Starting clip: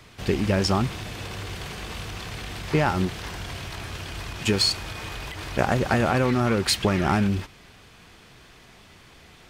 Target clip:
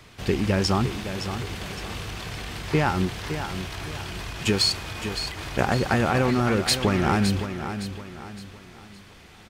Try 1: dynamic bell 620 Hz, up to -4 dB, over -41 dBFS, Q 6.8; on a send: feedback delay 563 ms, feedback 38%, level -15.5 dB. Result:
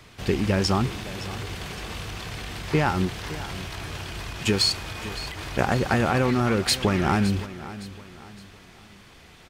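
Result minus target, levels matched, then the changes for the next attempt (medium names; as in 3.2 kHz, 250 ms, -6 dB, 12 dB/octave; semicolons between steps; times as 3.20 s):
echo-to-direct -6 dB
change: feedback delay 563 ms, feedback 38%, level -9.5 dB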